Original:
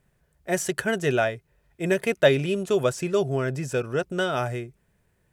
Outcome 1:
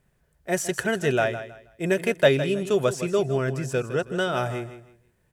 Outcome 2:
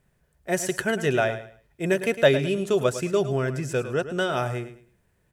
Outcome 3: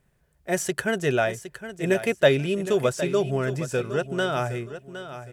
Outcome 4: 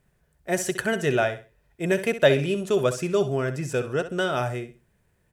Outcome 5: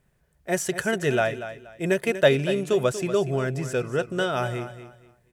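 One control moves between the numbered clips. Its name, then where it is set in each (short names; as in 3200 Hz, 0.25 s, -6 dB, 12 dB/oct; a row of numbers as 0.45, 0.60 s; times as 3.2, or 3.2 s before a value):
feedback echo, time: 160, 106, 763, 64, 238 ms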